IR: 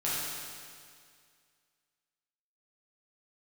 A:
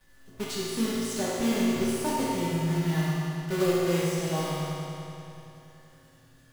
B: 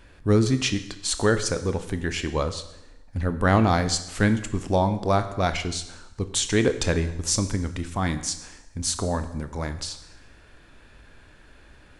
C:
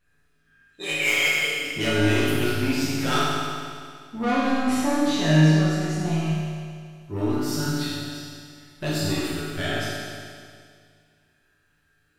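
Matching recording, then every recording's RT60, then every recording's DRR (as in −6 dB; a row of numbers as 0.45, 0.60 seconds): C; 3.0, 0.90, 2.1 seconds; −9.0, 9.5, −9.0 decibels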